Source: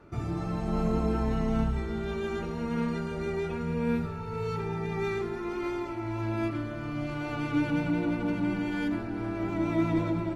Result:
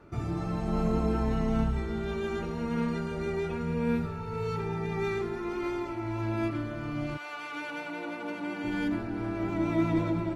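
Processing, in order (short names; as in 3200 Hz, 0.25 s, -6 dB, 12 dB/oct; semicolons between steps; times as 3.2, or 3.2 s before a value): 7.16–8.63 HPF 1000 Hz -> 360 Hz 12 dB/oct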